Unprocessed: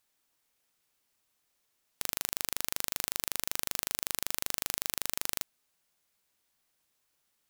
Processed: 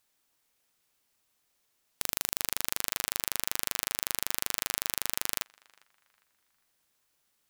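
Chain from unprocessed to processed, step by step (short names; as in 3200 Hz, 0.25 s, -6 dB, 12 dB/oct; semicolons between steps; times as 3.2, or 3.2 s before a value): narrowing echo 0.404 s, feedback 42%, band-pass 1500 Hz, level -22.5 dB; gain +2 dB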